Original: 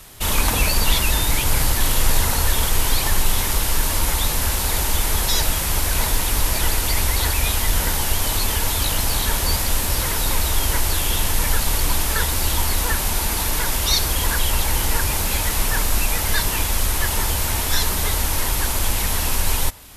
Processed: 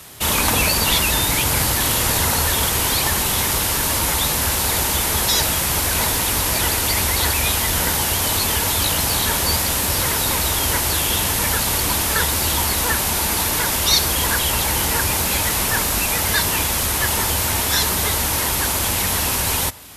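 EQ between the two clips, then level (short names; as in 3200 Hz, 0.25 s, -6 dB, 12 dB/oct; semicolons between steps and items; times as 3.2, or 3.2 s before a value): HPF 85 Hz 12 dB/oct; +3.5 dB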